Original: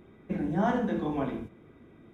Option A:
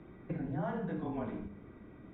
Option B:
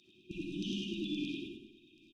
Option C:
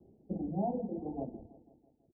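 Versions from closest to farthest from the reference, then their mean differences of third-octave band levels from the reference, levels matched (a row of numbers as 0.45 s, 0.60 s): A, C, B; 5.0 dB, 7.5 dB, 14.0 dB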